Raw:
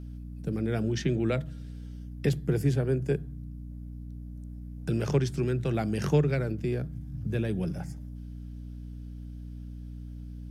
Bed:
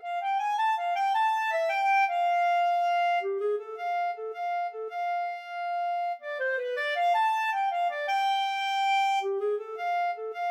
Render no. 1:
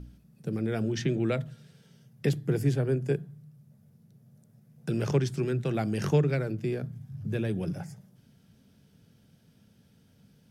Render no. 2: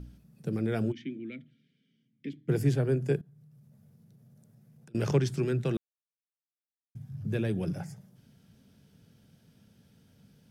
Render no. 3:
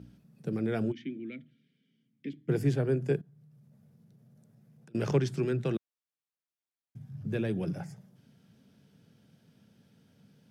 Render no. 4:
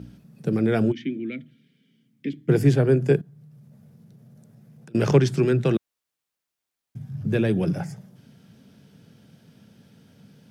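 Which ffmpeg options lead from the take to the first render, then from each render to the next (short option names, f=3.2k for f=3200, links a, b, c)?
-af "bandreject=f=60:t=h:w=4,bandreject=f=120:t=h:w=4,bandreject=f=180:t=h:w=4,bandreject=f=240:t=h:w=4,bandreject=f=300:t=h:w=4"
-filter_complex "[0:a]asplit=3[a][b][c];[a]afade=t=out:st=0.91:d=0.02[d];[b]asplit=3[e][f][g];[e]bandpass=f=270:t=q:w=8,volume=0dB[h];[f]bandpass=f=2.29k:t=q:w=8,volume=-6dB[i];[g]bandpass=f=3.01k:t=q:w=8,volume=-9dB[j];[h][i][j]amix=inputs=3:normalize=0,afade=t=in:st=0.91:d=0.02,afade=t=out:st=2.48:d=0.02[k];[c]afade=t=in:st=2.48:d=0.02[l];[d][k][l]amix=inputs=3:normalize=0,asettb=1/sr,asplit=3[m][n][o];[m]atrim=end=3.214[p];[n]atrim=start=3.21:end=4.95,asetpts=PTS-STARTPTS,afade=t=in:d=0.004:c=qsin,afade=t=out:st=1.736:d=0.004:c=qsin,acompressor=threshold=-53dB:ratio=16:attack=3.2:release=140:knee=1:detection=peak[q];[o]atrim=start=4.946[r];[p][q]acrossfade=d=0.004:c1=hsin:c2=qsin[s];[s][r]acrossfade=d=0.004:c1=qsin:c2=hsin,asplit=3[t][u][v];[t]atrim=end=5.77,asetpts=PTS-STARTPTS,afade=t=out:st=5.766:d=0.004:c=hsin[w];[u]atrim=start=5.77:end=6.95,asetpts=PTS-STARTPTS,volume=0[x];[v]atrim=start=6.95,asetpts=PTS-STARTPTS,afade=t=in:d=0.004:c=hsin[y];[w][x][y]concat=n=3:v=0:a=1"
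-af "highpass=120,highshelf=f=6.1k:g=-7"
-af "volume=9.5dB"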